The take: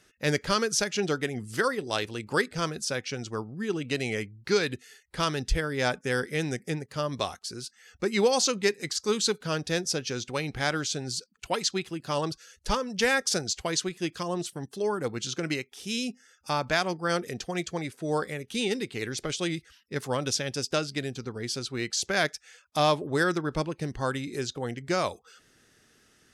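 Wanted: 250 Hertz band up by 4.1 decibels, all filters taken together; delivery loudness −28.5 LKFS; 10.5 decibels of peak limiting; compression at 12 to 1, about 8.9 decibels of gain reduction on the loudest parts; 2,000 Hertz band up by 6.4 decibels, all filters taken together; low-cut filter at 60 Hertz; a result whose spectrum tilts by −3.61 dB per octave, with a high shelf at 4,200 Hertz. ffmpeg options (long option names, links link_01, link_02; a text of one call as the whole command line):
ffmpeg -i in.wav -af "highpass=60,equalizer=frequency=250:width_type=o:gain=5.5,equalizer=frequency=2000:width_type=o:gain=7,highshelf=frequency=4200:gain=5,acompressor=threshold=-24dB:ratio=12,volume=4.5dB,alimiter=limit=-17.5dB:level=0:latency=1" out.wav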